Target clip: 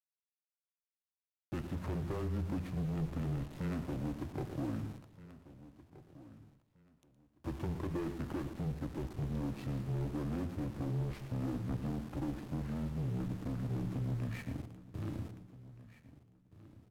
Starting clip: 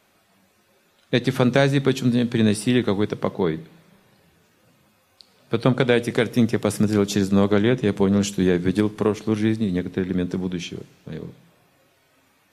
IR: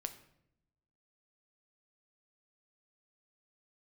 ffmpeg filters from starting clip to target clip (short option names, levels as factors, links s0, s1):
-filter_complex "[0:a]highshelf=f=3100:g=7,acompressor=threshold=0.0708:ratio=4,aeval=exprs='(tanh(28.2*val(0)+0.1)-tanh(0.1))/28.2':c=same,afreqshift=-20,adynamicsmooth=sensitivity=3.5:basefreq=700,flanger=delay=6.5:depth=5.1:regen=-86:speed=0.62:shape=sinusoidal,aeval=exprs='val(0)*gte(abs(val(0)),0.00355)':c=same,aecho=1:1:1166|2332:0.133|0.032,asplit=2[s0][s1];[1:a]atrim=start_sample=2205,adelay=85[s2];[s1][s2]afir=irnorm=-1:irlink=0,volume=0.282[s3];[s0][s3]amix=inputs=2:normalize=0,asetrate=32667,aresample=44100,volume=1.12"